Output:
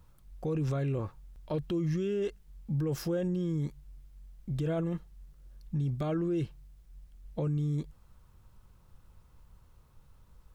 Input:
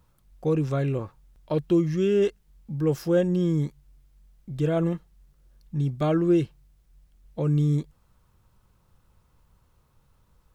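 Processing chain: low shelf 74 Hz +7.5 dB; limiter -24.5 dBFS, peak gain reduction 13 dB

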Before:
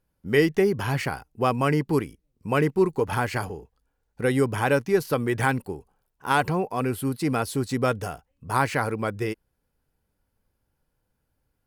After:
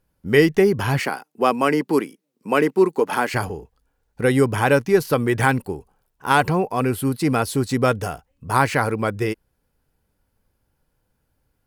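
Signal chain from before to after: 0.99–3.34 HPF 210 Hz 24 dB/oct; gain +5 dB

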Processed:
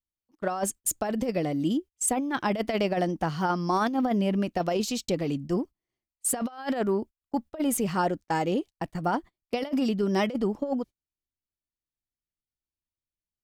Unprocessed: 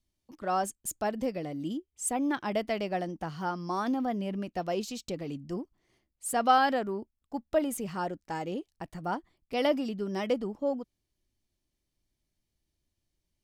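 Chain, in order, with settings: gate -45 dBFS, range -26 dB; negative-ratio compressor -31 dBFS, ratio -0.5; gain +6 dB

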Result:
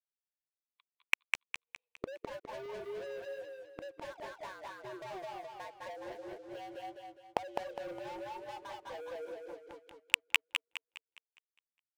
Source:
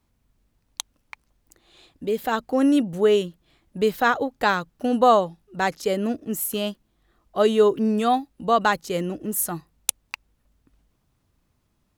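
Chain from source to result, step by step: per-bin expansion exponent 1.5; AGC gain up to 8.5 dB; mistuned SSB +130 Hz 330–2600 Hz; compressor 6:1, threshold -22 dBFS, peak gain reduction 14 dB; tilt -3.5 dB/oct; echo 0.216 s -3.5 dB; gate -42 dBFS, range -23 dB; sample leveller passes 5; notch 1300 Hz, Q 6.2; flipped gate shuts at -36 dBFS, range -41 dB; warbling echo 0.205 s, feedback 40%, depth 55 cents, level -4 dB; gain +9 dB

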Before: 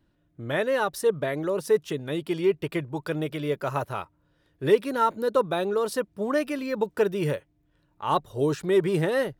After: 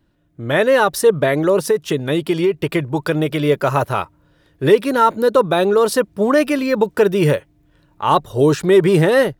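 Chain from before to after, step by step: AGC gain up to 7 dB; in parallel at +2.5 dB: limiter -11.5 dBFS, peak gain reduction 8.5 dB; 1.67–3.42 on the sum: compressor 4:1, threshold -11 dBFS, peak gain reduction 6 dB; gain -2 dB

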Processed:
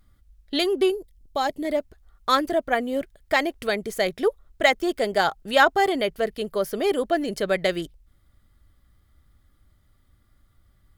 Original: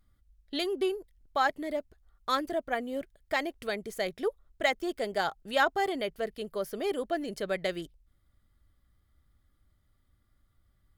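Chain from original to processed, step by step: 0.9–1.65 bell 1500 Hz -12.5 dB 1.6 oct; gain +8.5 dB

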